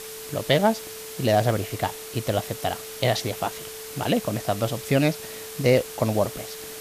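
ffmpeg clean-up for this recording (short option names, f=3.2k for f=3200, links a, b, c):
-af "bandreject=f=440:w=30,afftdn=nr=30:nf=-38"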